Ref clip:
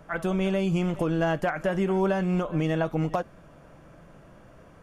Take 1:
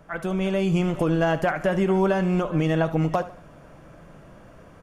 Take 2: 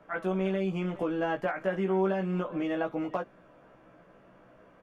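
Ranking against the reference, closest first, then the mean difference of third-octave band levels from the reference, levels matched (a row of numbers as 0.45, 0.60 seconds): 1, 2; 1.0, 3.5 decibels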